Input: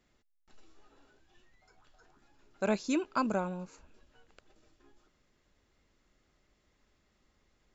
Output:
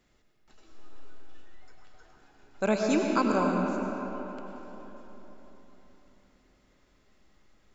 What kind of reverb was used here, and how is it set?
algorithmic reverb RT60 4.1 s, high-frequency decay 0.55×, pre-delay 60 ms, DRR 0.5 dB; trim +3.5 dB

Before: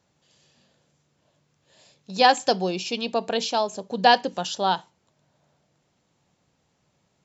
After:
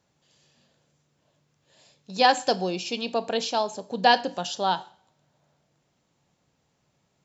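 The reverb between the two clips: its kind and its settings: two-slope reverb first 0.51 s, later 1.7 s, from -28 dB, DRR 14 dB; trim -2 dB

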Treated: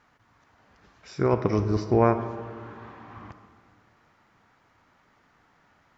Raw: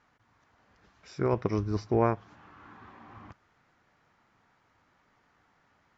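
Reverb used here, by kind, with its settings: algorithmic reverb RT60 2 s, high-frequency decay 0.4×, pre-delay 15 ms, DRR 9 dB; trim +4.5 dB

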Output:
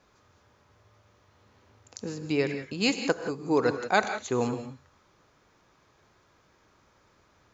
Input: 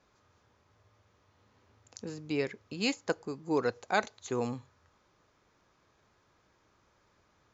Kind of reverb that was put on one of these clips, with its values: gated-style reverb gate 200 ms rising, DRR 8 dB; trim +5 dB

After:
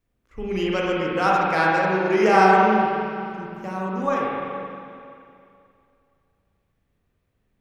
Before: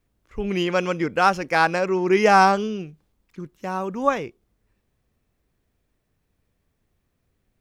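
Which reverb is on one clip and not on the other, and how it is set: spring tank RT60 2.5 s, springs 37/42/46 ms, chirp 35 ms, DRR -4.5 dB; trim -5.5 dB

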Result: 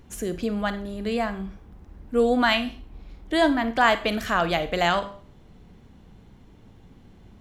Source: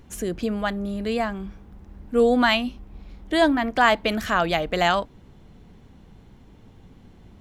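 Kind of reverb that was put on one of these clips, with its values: Schroeder reverb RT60 0.42 s, combs from 31 ms, DRR 11 dB; trim -1.5 dB

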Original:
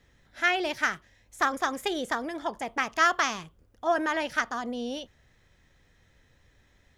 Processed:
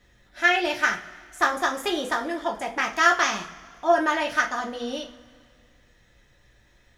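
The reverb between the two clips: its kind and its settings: two-slope reverb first 0.27 s, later 2 s, from -21 dB, DRR -0.5 dB; trim +1 dB

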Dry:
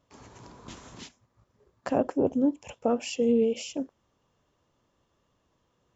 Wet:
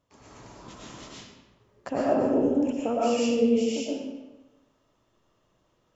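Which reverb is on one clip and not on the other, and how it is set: algorithmic reverb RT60 1.1 s, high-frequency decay 0.8×, pre-delay 75 ms, DRR -6.5 dB; trim -4 dB

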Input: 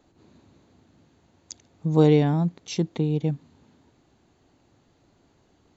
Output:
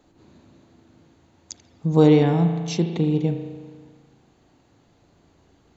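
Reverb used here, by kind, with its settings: spring tank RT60 1.6 s, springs 36 ms, chirp 50 ms, DRR 5.5 dB; trim +2.5 dB

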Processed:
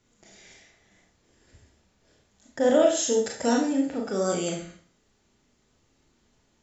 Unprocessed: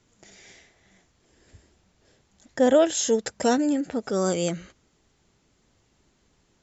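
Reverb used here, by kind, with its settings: Schroeder reverb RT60 0.46 s, combs from 26 ms, DRR -0.5 dB; trim -4.5 dB

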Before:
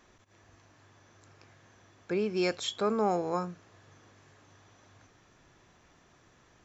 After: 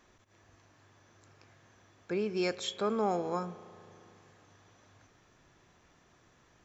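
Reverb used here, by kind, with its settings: spring tank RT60 2.9 s, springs 35 ms, chirp 45 ms, DRR 16.5 dB; trim -2.5 dB

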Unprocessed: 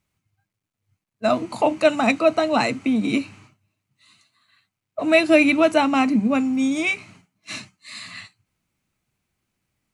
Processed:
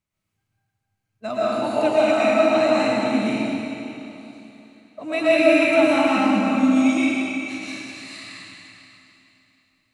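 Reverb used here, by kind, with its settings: algorithmic reverb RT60 3.1 s, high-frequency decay 0.95×, pre-delay 80 ms, DRR -9.5 dB; trim -10 dB

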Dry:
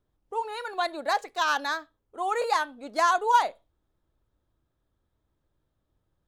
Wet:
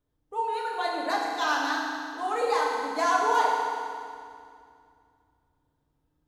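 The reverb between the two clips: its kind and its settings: FDN reverb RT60 2.3 s, low-frequency decay 1.45×, high-frequency decay 0.9×, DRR -3.5 dB; trim -5 dB

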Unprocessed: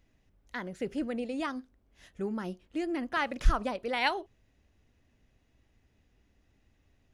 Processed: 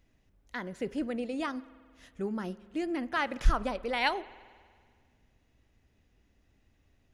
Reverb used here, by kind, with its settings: spring tank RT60 1.9 s, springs 46 ms, chirp 40 ms, DRR 18.5 dB

